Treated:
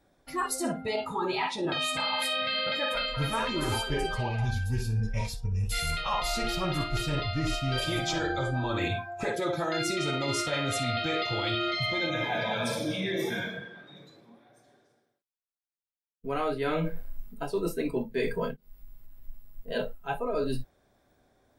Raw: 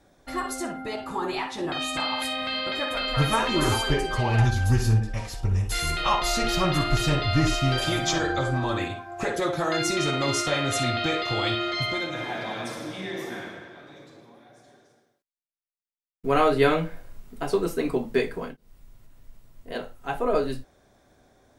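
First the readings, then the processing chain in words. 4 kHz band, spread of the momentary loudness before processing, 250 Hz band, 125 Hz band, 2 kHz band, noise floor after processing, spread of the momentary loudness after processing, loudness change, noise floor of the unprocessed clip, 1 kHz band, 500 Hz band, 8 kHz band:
-3.0 dB, 12 LU, -4.5 dB, -6.0 dB, -3.0 dB, -80 dBFS, 7 LU, -4.5 dB, -73 dBFS, -4.5 dB, -4.5 dB, -5.0 dB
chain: spectral noise reduction 14 dB; peaking EQ 6.4 kHz -5 dB 0.3 oct; reverse; compression 12:1, threshold -33 dBFS, peak gain reduction 19 dB; reverse; trim +7 dB

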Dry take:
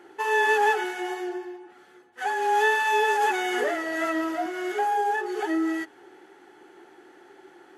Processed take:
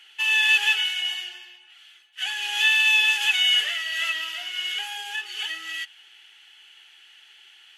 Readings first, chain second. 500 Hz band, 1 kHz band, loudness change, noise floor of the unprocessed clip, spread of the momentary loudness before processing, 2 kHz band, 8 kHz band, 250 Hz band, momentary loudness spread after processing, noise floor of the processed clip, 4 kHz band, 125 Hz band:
under -25 dB, -15.5 dB, +3.5 dB, -53 dBFS, 12 LU, +4.5 dB, +6.0 dB, under -30 dB, 14 LU, -53 dBFS, +17.5 dB, no reading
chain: octave divider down 1 oct, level -4 dB; resonant high-pass 2.9 kHz, resonance Q 6.5; trim +4.5 dB

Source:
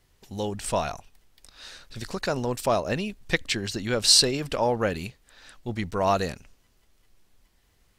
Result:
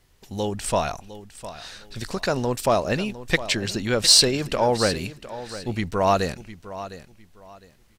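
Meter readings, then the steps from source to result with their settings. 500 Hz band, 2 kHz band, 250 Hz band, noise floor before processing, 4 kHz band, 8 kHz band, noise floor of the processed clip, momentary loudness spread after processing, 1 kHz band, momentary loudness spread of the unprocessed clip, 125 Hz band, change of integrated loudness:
+3.5 dB, +3.5 dB, +3.5 dB, -65 dBFS, +3.0 dB, +3.0 dB, -57 dBFS, 21 LU, +3.5 dB, 23 LU, +3.5 dB, +3.0 dB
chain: in parallel at -10 dB: overload inside the chain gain 15 dB; on the sum: feedback delay 707 ms, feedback 25%, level -14.5 dB; trim +1 dB

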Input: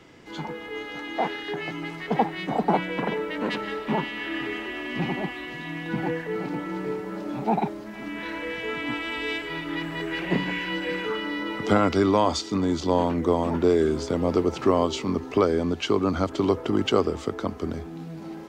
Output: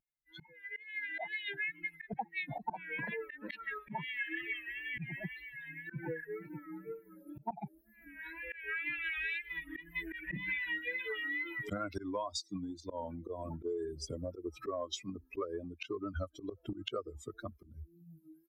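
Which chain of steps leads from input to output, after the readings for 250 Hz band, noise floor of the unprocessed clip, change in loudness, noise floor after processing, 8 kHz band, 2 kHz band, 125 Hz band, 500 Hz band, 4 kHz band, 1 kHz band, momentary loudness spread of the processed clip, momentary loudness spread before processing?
-19.0 dB, -38 dBFS, -13.5 dB, -67 dBFS, -10.0 dB, -5.5 dB, -15.5 dB, -17.5 dB, -13.0 dB, -17.0 dB, 12 LU, 11 LU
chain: expander on every frequency bin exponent 3; slow attack 236 ms; compression 16:1, threshold -43 dBFS, peak gain reduction 21.5 dB; peaking EQ 250 Hz -13 dB 0.24 oct; wow and flutter 68 cents; trim +9.5 dB

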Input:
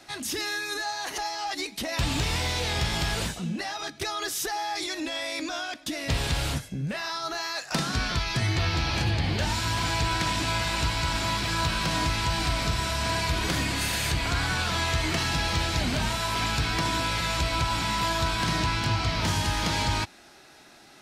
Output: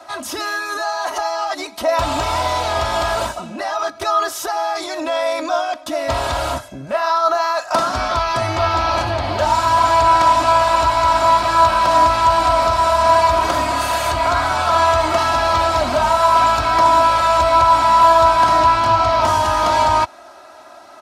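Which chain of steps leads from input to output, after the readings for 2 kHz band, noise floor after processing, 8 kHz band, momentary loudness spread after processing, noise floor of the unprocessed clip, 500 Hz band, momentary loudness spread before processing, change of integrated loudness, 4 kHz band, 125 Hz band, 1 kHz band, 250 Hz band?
+5.5 dB, -40 dBFS, +2.5 dB, 10 LU, -52 dBFS, +17.0 dB, 5 LU, +11.0 dB, +2.5 dB, -0.5 dB, +18.0 dB, +3.0 dB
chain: high-pass 56 Hz; high-order bell 840 Hz +14 dB; comb 3.1 ms, depth 67%; trim +1 dB

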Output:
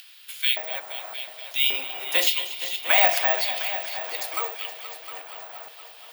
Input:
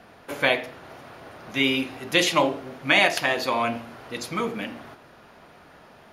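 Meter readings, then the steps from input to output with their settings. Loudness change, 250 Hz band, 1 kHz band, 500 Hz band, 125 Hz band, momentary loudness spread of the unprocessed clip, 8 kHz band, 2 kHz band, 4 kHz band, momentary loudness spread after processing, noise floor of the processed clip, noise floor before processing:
+0.5 dB, -23.0 dB, -2.5 dB, -6.0 dB, under -35 dB, 18 LU, +1.0 dB, -3.0 dB, +1.5 dB, 19 LU, -47 dBFS, -51 dBFS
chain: chunks repeated in reverse 307 ms, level -13 dB; steep high-pass 270 Hz 96 dB/octave; treble shelf 4.6 kHz +8 dB; band-stop 6.1 kHz, Q 21; in parallel at -0.5 dB: upward compressor, threshold -26 dBFS; on the sum: LFO high-pass square 0.88 Hz 720–3200 Hz; on a send: multi-head delay 236 ms, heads all three, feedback 54%, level -15.5 dB; on the sum: careless resampling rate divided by 2×, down none, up zero stuff; trim -11.5 dB

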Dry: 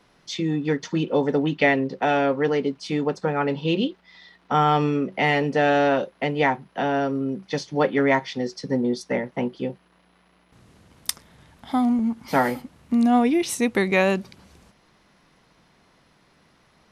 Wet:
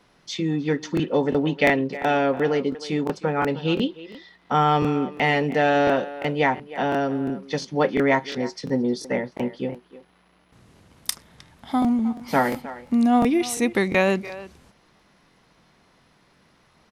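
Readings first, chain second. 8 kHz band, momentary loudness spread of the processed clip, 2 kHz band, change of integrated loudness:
+0.5 dB, 11 LU, 0.0 dB, 0.0 dB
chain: speakerphone echo 310 ms, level -15 dB; crackling interface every 0.35 s, samples 1024, repeat, from 0.95 s

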